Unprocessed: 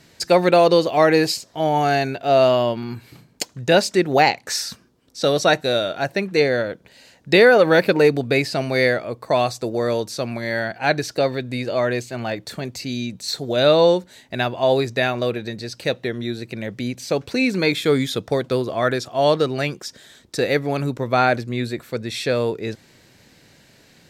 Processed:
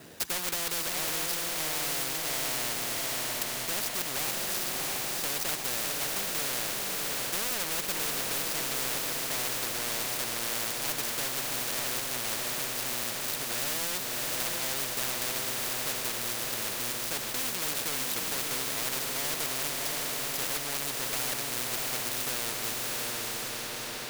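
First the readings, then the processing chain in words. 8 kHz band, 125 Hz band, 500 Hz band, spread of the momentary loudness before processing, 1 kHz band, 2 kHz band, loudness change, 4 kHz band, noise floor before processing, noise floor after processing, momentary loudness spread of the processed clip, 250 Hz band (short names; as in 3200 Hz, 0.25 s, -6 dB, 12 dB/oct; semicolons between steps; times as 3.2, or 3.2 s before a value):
+5.5 dB, -18.5 dB, -22.0 dB, 13 LU, -15.0 dB, -10.5 dB, -9.5 dB, -5.0 dB, -53 dBFS, -36 dBFS, 2 LU, -19.5 dB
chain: median filter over 41 samples; tilt +4 dB/oct; overloaded stage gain 20.5 dB; on a send: diffused feedback echo 0.666 s, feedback 48%, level -3 dB; on the sum: spectral compressor 4:1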